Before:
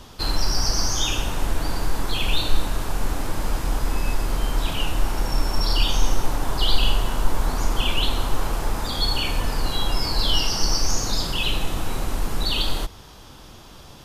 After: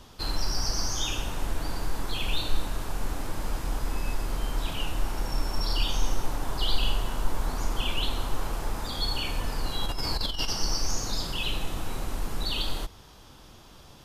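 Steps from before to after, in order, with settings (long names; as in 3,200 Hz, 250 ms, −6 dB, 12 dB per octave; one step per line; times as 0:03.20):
0:09.83–0:10.53: compressor whose output falls as the input rises −20 dBFS, ratio −0.5
level −6.5 dB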